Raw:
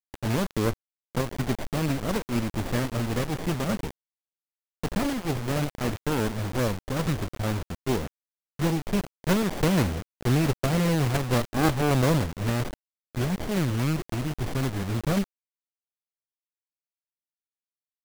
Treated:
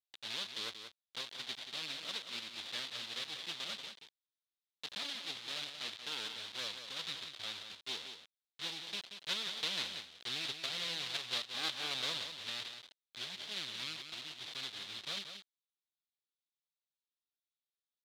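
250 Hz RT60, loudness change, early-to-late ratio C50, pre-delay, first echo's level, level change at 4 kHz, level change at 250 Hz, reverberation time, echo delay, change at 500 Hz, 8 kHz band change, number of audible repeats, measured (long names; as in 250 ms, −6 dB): no reverb audible, −12.5 dB, no reverb audible, no reverb audible, −8.5 dB, +1.5 dB, −30.5 dB, no reverb audible, 181 ms, −24.5 dB, −10.5 dB, 1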